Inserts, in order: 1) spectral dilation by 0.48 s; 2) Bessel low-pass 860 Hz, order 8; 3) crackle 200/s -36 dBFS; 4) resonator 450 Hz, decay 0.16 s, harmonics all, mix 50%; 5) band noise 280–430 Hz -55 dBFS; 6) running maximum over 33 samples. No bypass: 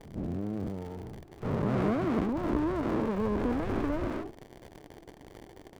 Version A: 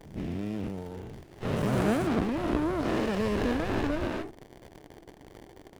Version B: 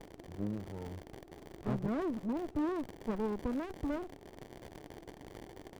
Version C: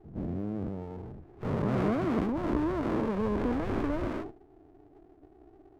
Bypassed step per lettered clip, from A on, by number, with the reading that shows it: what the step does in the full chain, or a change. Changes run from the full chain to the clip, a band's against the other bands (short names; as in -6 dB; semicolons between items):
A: 2, crest factor change +1.5 dB; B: 1, 4 kHz band +2.5 dB; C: 3, momentary loudness spread change -11 LU